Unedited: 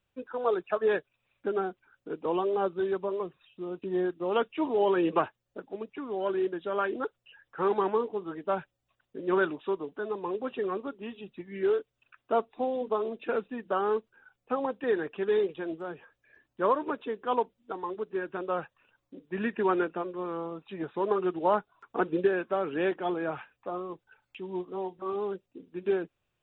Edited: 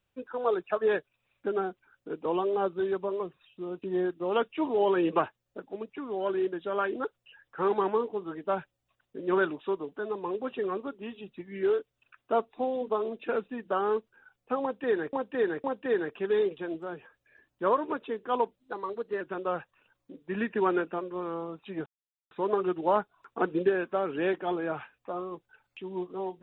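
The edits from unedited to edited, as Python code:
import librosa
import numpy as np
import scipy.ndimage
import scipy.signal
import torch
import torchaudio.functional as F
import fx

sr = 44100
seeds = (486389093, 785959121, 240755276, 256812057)

y = fx.edit(x, sr, fx.repeat(start_s=14.62, length_s=0.51, count=3),
    fx.speed_span(start_s=17.56, length_s=0.68, speed=1.08),
    fx.insert_silence(at_s=20.89, length_s=0.45), tone=tone)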